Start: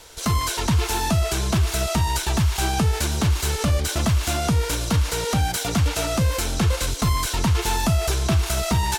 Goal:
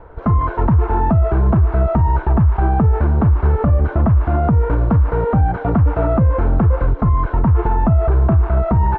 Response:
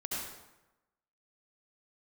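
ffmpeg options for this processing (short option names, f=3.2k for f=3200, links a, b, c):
-af "lowpass=f=1.3k:w=0.5412,lowpass=f=1.3k:w=1.3066,lowshelf=f=170:g=5,alimiter=limit=-15dB:level=0:latency=1:release=61,volume=8dB"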